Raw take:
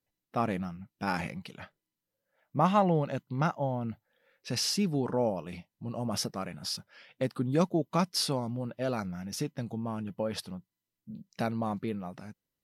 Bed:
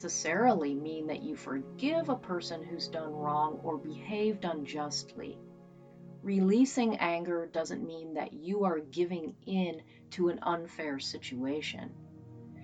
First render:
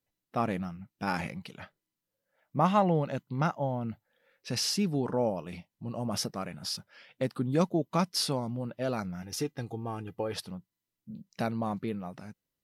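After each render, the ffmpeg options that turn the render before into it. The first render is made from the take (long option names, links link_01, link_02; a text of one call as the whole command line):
ffmpeg -i in.wav -filter_complex "[0:a]asettb=1/sr,asplit=3[link_01][link_02][link_03];[link_01]atrim=end=9.224[link_04];[link_02]atrim=start=9.22:end=10.34,asetpts=PTS-STARTPTS,afade=type=in:duration=0.004:curve=qsin,afade=type=out:start_time=1.116:duration=0.004:curve=qsin,aecho=1:1:2.5:0.65,atrim=end_sample=49392[link_05];[link_03]atrim=start=10.336[link_06];[link_04][link_05]acrossfade=duration=0.004:curve1=hsin:curve2=qsin[link_07];[link_07][link_06]acrossfade=duration=0.004:curve1=qsin:curve2=hsin" out.wav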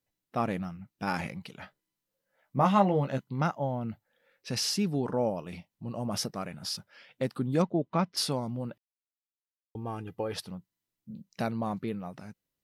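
ffmpeg -i in.wav -filter_complex "[0:a]asettb=1/sr,asplit=3[link_01][link_02][link_03];[link_01]atrim=end=1.594[link_04];[link_02]atrim=start=1.59:end=3.28,asetpts=PTS-STARTPTS,afade=type=in:duration=0.004:curve=qsin,afade=type=out:start_time=1.686:duration=0.004:curve=qsin,asplit=2[link_05][link_06];[link_06]adelay=15,volume=-5dB[link_07];[link_05][link_07]amix=inputs=2:normalize=0,atrim=end_sample=74529[link_08];[link_03]atrim=start=3.276[link_09];[link_04][link_08]acrossfade=duration=0.004:curve1=hsin:curve2=qsin[link_10];[link_10][link_09]acrossfade=duration=0.004:curve1=qsin:curve2=hsin,asplit=3[link_11][link_12][link_13];[link_11]afade=type=out:start_time=7.61:duration=0.02[link_14];[link_12]lowpass=2700,afade=type=in:start_time=7.61:duration=0.02,afade=type=out:start_time=8.16:duration=0.02[link_15];[link_13]afade=type=in:start_time=8.16:duration=0.02[link_16];[link_14][link_15][link_16]amix=inputs=3:normalize=0,asplit=3[link_17][link_18][link_19];[link_17]atrim=end=8.78,asetpts=PTS-STARTPTS,afade=type=out:start_time=8.776:duration=0.004:curve=hsin[link_20];[link_18]atrim=start=8.78:end=9.75,asetpts=PTS-STARTPTS,volume=0[link_21];[link_19]atrim=start=9.75,asetpts=PTS-STARTPTS,afade=type=in:duration=0.004:curve=hsin[link_22];[link_20][link_21][link_22]concat=n=3:v=0:a=1" out.wav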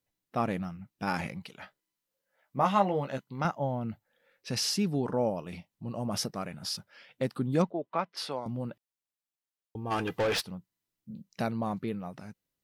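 ffmpeg -i in.wav -filter_complex "[0:a]asettb=1/sr,asplit=3[link_01][link_02][link_03];[link_01]atrim=end=1.454[link_04];[link_02]atrim=start=1.45:end=3.45,asetpts=PTS-STARTPTS,afade=type=in:duration=0.004:curve=qsin,afade=type=out:start_time=1.996:duration=0.004:curve=qsin,lowshelf=frequency=280:gain=-8.5[link_05];[link_03]atrim=start=3.446[link_06];[link_04][link_05]acrossfade=duration=0.004:curve1=hsin:curve2=qsin[link_07];[link_07][link_06]acrossfade=duration=0.004:curve1=qsin:curve2=hsin,asettb=1/sr,asplit=3[link_08][link_09][link_10];[link_08]atrim=end=7.714[link_11];[link_09]atrim=start=7.71:end=8.46,asetpts=PTS-STARTPTS,afade=type=in:duration=0.004:curve=qsin,afade=type=out:start_time=0.746:duration=0.004:curve=qsin,acrossover=split=390 3800:gain=0.178 1 0.224[link_12][link_13][link_14];[link_12][link_13][link_14]amix=inputs=3:normalize=0[link_15];[link_10]atrim=start=8.456[link_16];[link_11][link_15]acrossfade=duration=0.004:curve1=hsin:curve2=qsin[link_17];[link_17][link_16]acrossfade=duration=0.004:curve1=qsin:curve2=hsin,asplit=3[link_18][link_19][link_20];[link_18]afade=type=out:start_time=9.9:duration=0.02[link_21];[link_19]asplit=2[link_22][link_23];[link_23]highpass=frequency=720:poles=1,volume=26dB,asoftclip=type=tanh:threshold=-20.5dB[link_24];[link_22][link_24]amix=inputs=2:normalize=0,lowpass=frequency=5100:poles=1,volume=-6dB,afade=type=in:start_time=9.9:duration=0.02,afade=type=out:start_time=10.41:duration=0.02[link_25];[link_20]afade=type=in:start_time=10.41:duration=0.02[link_26];[link_21][link_25][link_26]amix=inputs=3:normalize=0" out.wav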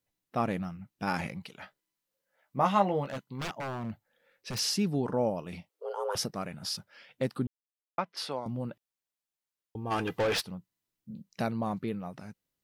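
ffmpeg -i in.wav -filter_complex "[0:a]asettb=1/sr,asplit=3[link_01][link_02][link_03];[link_01]atrim=end=3.054[link_04];[link_02]atrim=start=3.05:end=4.59,asetpts=PTS-STARTPTS,afade=type=in:duration=0.004:curve=qsin,afade=type=out:start_time=1.536:duration=0.004:curve=qsin,aeval=exprs='0.0316*(abs(mod(val(0)/0.0316+3,4)-2)-1)':channel_layout=same[link_05];[link_03]atrim=start=4.586[link_06];[link_04][link_05]acrossfade=duration=0.004:curve1=hsin:curve2=qsin[link_07];[link_07][link_06]acrossfade=duration=0.004:curve1=qsin:curve2=hsin,asettb=1/sr,asplit=3[link_08][link_09][link_10];[link_08]atrim=end=5.694[link_11];[link_09]atrim=start=5.69:end=6.15,asetpts=PTS-STARTPTS,afade=type=in:duration=0.004:curve=qsin,afade=type=out:start_time=0.456:duration=0.004:curve=qsin,afreqshift=300[link_12];[link_10]atrim=start=6.146[link_13];[link_11][link_12]acrossfade=duration=0.004:curve1=hsin:curve2=qsin[link_14];[link_14][link_13]acrossfade=duration=0.004:curve1=qsin:curve2=hsin,asplit=3[link_15][link_16][link_17];[link_15]atrim=end=7.47,asetpts=PTS-STARTPTS,afade=type=out:start_time=7.466:duration=0.004:curve=hsin[link_18];[link_16]atrim=start=7.47:end=7.98,asetpts=PTS-STARTPTS,volume=0[link_19];[link_17]atrim=start=7.98,asetpts=PTS-STARTPTS,afade=type=in:duration=0.004:curve=hsin[link_20];[link_18][link_19][link_20]concat=n=3:v=0:a=1" out.wav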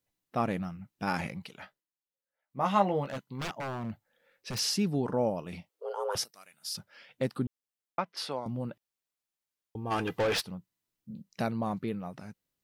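ffmpeg -i in.wav -filter_complex "[0:a]asettb=1/sr,asplit=3[link_01][link_02][link_03];[link_01]atrim=end=6.244[link_04];[link_02]atrim=start=6.24:end=6.75,asetpts=PTS-STARTPTS,afade=type=in:duration=0.004:curve=qsin,afade=type=out:start_time=0.506:duration=0.004:curve=qsin,aderivative[link_05];[link_03]atrim=start=6.746[link_06];[link_04][link_05]acrossfade=duration=0.004:curve1=hsin:curve2=qsin[link_07];[link_07][link_06]acrossfade=duration=0.004:curve1=qsin:curve2=hsin,asplit=3[link_08][link_09][link_10];[link_08]atrim=end=1.87,asetpts=PTS-STARTPTS,afade=type=out:start_time=1.6:duration=0.27:silence=0.16788[link_11];[link_09]atrim=start=1.87:end=2.47,asetpts=PTS-STARTPTS,volume=-15.5dB[link_12];[link_10]atrim=start=2.47,asetpts=PTS-STARTPTS,afade=type=in:duration=0.27:silence=0.16788[link_13];[link_11][link_12][link_13]concat=n=3:v=0:a=1" out.wav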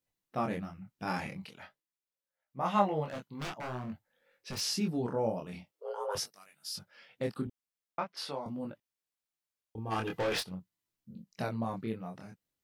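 ffmpeg -i in.wav -af "flanger=delay=20:depth=7.3:speed=0.46" out.wav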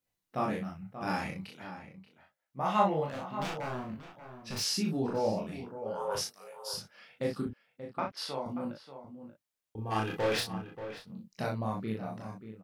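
ffmpeg -i in.wav -filter_complex "[0:a]asplit=2[link_01][link_02];[link_02]adelay=37,volume=-3dB[link_03];[link_01][link_03]amix=inputs=2:normalize=0,asplit=2[link_04][link_05];[link_05]adelay=583.1,volume=-11dB,highshelf=frequency=4000:gain=-13.1[link_06];[link_04][link_06]amix=inputs=2:normalize=0" out.wav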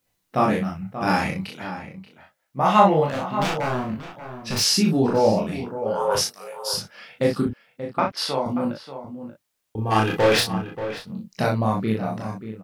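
ffmpeg -i in.wav -af "volume=12dB,alimiter=limit=-3dB:level=0:latency=1" out.wav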